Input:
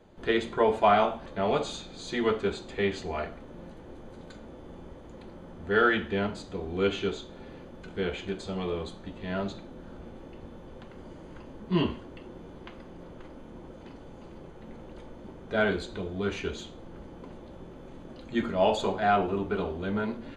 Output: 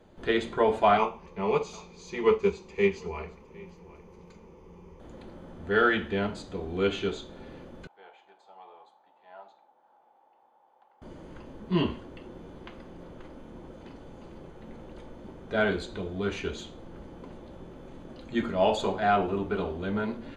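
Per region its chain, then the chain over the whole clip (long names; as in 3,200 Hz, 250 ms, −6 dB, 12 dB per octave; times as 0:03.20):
0:00.97–0:05.00: EQ curve with evenly spaced ripples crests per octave 0.8, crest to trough 13 dB + single-tap delay 760 ms −17.5 dB + expander for the loud parts, over −31 dBFS
0:07.87–0:11.02: resonant band-pass 820 Hz, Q 7.6 + spectral tilt +4 dB per octave
whole clip: no processing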